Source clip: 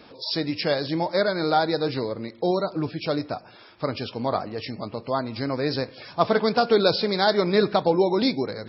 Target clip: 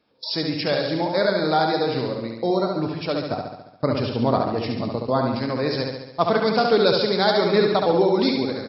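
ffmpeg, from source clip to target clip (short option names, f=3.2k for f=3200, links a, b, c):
-filter_complex "[0:a]agate=range=-20dB:threshold=-36dB:ratio=16:detection=peak,asettb=1/sr,asplit=3[a][b][c];[a]atrim=end=3.314[d];[b]atrim=start=3.31:end=5.35,asetpts=PTS-STARTPTS,afade=t=in:d=0.004:c=qsin,afade=t=out:st=2.036:d=0.004:c=qsin,equalizer=f=160:w=0.3:g=7[e];[c]atrim=start=5.346[f];[d][e]acrossfade=d=0.004:c1=hsin:c2=qsin[g];[g][f]acrossfade=d=0.004:c1=qsin:c2=hsin,aecho=1:1:70|140|210|280|350|420|490|560:0.631|0.372|0.22|0.13|0.0765|0.0451|0.0266|0.0157"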